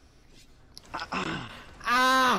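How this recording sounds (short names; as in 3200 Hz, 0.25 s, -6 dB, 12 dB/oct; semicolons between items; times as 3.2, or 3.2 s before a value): noise floor -58 dBFS; spectral tilt -3.0 dB/oct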